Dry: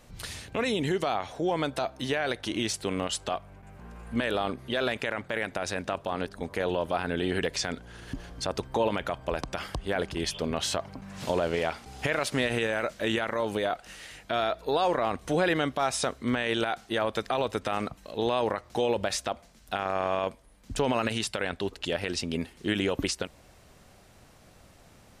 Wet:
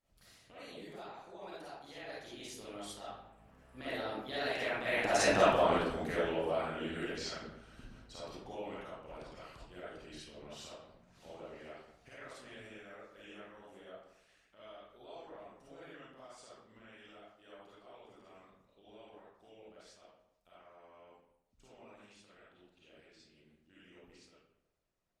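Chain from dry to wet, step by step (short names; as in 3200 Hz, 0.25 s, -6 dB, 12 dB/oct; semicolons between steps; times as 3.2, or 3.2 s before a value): Doppler pass-by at 5.37, 32 m/s, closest 8 m; digital reverb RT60 0.85 s, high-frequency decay 0.7×, pre-delay 10 ms, DRR -9.5 dB; harmonic-percussive split harmonic -8 dB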